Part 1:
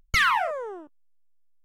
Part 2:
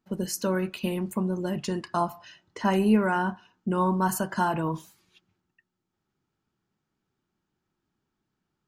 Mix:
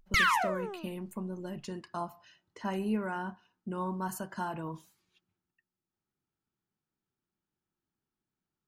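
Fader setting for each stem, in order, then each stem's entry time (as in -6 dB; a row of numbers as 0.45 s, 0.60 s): -4.5 dB, -10.5 dB; 0.00 s, 0.00 s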